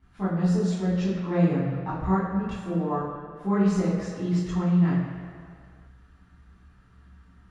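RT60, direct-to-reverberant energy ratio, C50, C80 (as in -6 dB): 2.1 s, -10.0 dB, 0.5 dB, 3.0 dB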